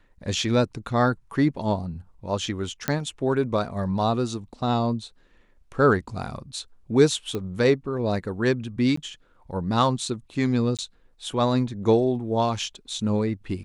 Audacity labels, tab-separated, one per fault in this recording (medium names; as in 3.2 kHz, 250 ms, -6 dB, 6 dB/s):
2.880000	2.880000	pop -8 dBFS
7.350000	7.350000	pop -17 dBFS
8.960000	8.970000	dropout 14 ms
10.770000	10.790000	dropout 17 ms